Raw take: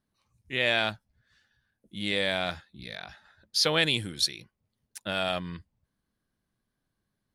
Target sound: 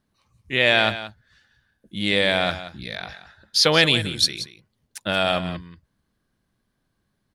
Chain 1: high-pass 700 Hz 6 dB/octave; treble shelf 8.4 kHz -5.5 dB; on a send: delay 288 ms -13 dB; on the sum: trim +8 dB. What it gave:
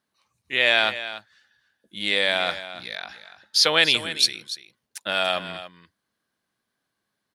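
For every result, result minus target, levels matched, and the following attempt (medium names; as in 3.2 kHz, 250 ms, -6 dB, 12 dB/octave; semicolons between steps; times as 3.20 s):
echo 110 ms late; 500 Hz band -3.0 dB
high-pass 700 Hz 6 dB/octave; treble shelf 8.4 kHz -5.5 dB; on a send: delay 178 ms -13 dB; on the sum: trim +8 dB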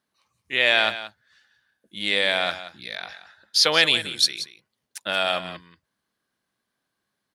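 500 Hz band -3.5 dB
treble shelf 8.4 kHz -5.5 dB; on a send: delay 178 ms -13 dB; on the sum: trim +8 dB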